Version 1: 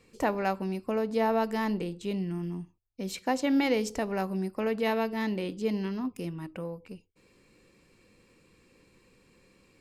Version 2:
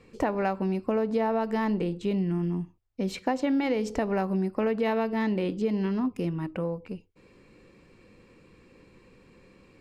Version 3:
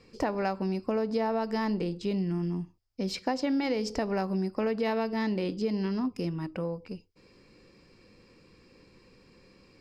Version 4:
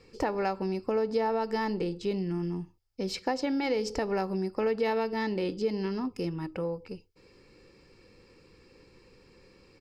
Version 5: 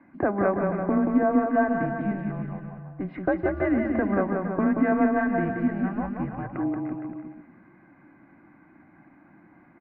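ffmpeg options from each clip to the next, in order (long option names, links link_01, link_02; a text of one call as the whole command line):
ffmpeg -i in.wav -af "lowpass=frequency=2100:poles=1,acompressor=threshold=-30dB:ratio=6,volume=7dB" out.wav
ffmpeg -i in.wav -af "equalizer=frequency=5000:width=3.4:gain=14.5,volume=-2.5dB" out.wav
ffmpeg -i in.wav -af "aecho=1:1:2.3:0.34" out.wav
ffmpeg -i in.wav -af "highpass=frequency=420:width_type=q:width=0.5412,highpass=frequency=420:width_type=q:width=1.307,lowpass=frequency=2000:width_type=q:width=0.5176,lowpass=frequency=2000:width_type=q:width=0.7071,lowpass=frequency=2000:width_type=q:width=1.932,afreqshift=-200,aecho=1:1:180|333|463|573.6|667.6:0.631|0.398|0.251|0.158|0.1,volume=7dB" out.wav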